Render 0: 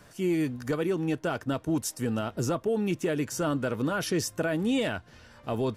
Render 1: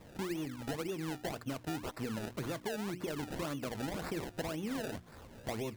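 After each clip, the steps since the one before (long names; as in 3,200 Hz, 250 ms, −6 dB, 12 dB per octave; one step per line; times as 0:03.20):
mains-hum notches 60/120/180/240/300/360 Hz
sample-and-hold swept by an LFO 28×, swing 100% 1.9 Hz
downward compressor 6 to 1, threshold −36 dBFS, peak gain reduction 13 dB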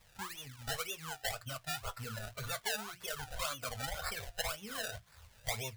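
guitar amp tone stack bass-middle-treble 10-0-10
flanger 1.8 Hz, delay 5.7 ms, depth 5.2 ms, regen −56%
noise reduction from a noise print of the clip's start 12 dB
level +17 dB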